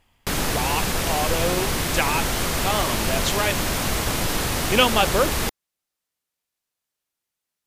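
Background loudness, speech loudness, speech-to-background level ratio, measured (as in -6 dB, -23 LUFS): -23.5 LUFS, -25.0 LUFS, -1.5 dB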